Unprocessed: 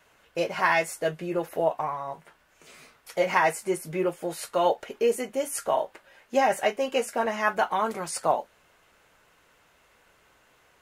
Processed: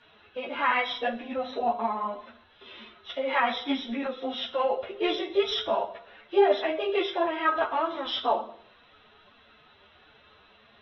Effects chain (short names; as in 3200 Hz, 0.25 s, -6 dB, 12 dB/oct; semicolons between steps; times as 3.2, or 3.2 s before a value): nonlinear frequency compression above 2600 Hz 4:1; bell 2400 Hz -4 dB 0.26 oct; in parallel at +1 dB: compressor 10:1, threshold -36 dBFS, peak gain reduction 19 dB; on the sum: formant-preserving pitch shift +7 st; on a send at -7 dB: reverb RT60 0.65 s, pre-delay 4 ms; on the sum: ensemble effect